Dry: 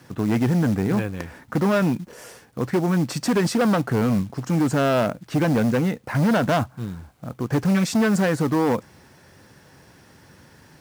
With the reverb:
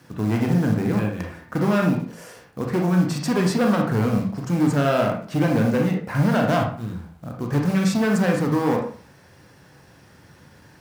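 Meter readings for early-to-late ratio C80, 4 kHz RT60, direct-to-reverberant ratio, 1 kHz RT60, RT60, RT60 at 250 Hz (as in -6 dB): 9.5 dB, 0.35 s, 1.0 dB, 0.45 s, 0.45 s, 0.40 s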